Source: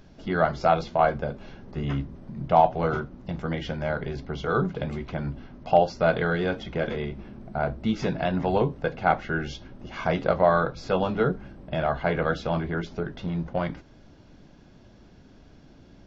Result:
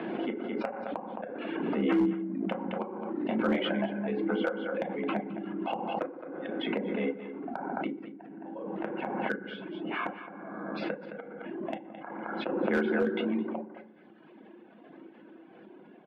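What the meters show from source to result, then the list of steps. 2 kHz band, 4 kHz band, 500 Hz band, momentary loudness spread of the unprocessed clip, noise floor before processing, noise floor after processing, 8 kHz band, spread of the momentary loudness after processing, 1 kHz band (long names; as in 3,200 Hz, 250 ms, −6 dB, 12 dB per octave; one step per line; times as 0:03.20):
−6.0 dB, −3.5 dB, −7.5 dB, 13 LU, −52 dBFS, −54 dBFS, can't be measured, 17 LU, −11.5 dB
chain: gate with flip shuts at −18 dBFS, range −40 dB
feedback delay network reverb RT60 1.1 s, low-frequency decay 1.45×, high-frequency decay 0.4×, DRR 1 dB
single-sideband voice off tune +51 Hz 160–2,900 Hz
reverb reduction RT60 1.6 s
single-tap delay 216 ms −12 dB
hard clipping −20.5 dBFS, distortion −21 dB
background raised ahead of every attack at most 24 dB per second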